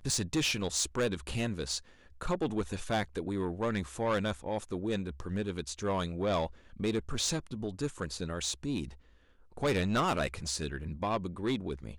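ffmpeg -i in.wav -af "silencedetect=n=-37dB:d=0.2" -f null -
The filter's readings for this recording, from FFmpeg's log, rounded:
silence_start: 1.79
silence_end: 2.21 | silence_duration: 0.43
silence_start: 6.47
silence_end: 6.80 | silence_duration: 0.33
silence_start: 8.88
silence_end: 9.57 | silence_duration: 0.69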